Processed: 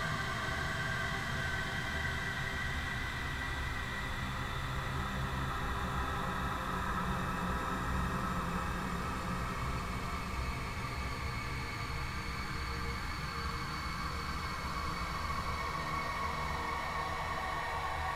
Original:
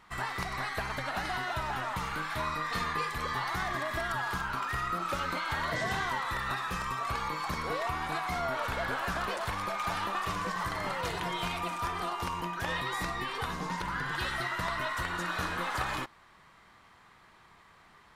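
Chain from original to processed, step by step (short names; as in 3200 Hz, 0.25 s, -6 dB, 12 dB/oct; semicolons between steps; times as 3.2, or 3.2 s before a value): rotary speaker horn 7.5 Hz; phaser 0.15 Hz, delay 2.9 ms, feedback 67%; Paulstretch 8.7×, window 1.00 s, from 5.83; gain -3.5 dB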